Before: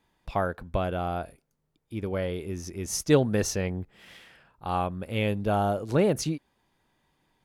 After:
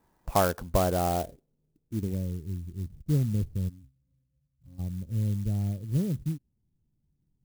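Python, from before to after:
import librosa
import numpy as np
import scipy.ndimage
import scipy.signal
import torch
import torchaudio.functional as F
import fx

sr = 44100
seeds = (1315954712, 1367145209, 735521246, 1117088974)

y = fx.filter_sweep_lowpass(x, sr, from_hz=1400.0, to_hz=140.0, start_s=0.74, end_s=2.42, q=0.94)
y = fx.octave_resonator(y, sr, note='C', decay_s=0.23, at=(3.68, 4.78), fade=0.02)
y = fx.clock_jitter(y, sr, seeds[0], jitter_ms=0.064)
y = F.gain(torch.from_numpy(y), 3.0).numpy()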